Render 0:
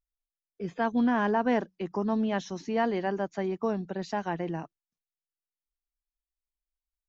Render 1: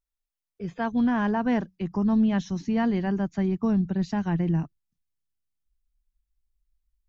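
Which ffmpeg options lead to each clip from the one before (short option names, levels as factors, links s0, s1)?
-af "asubboost=boost=11:cutoff=170"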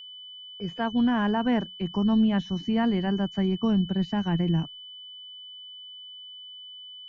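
-filter_complex "[0:a]acrossover=split=3300[s0][s1];[s1]acompressor=threshold=0.00158:ratio=4:attack=1:release=60[s2];[s0][s2]amix=inputs=2:normalize=0,agate=range=0.0398:threshold=0.002:ratio=16:detection=peak,aeval=exprs='val(0)+0.00891*sin(2*PI*3000*n/s)':c=same"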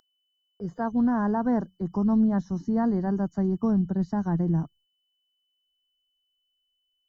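-af "asuperstop=centerf=2700:order=4:qfactor=0.73"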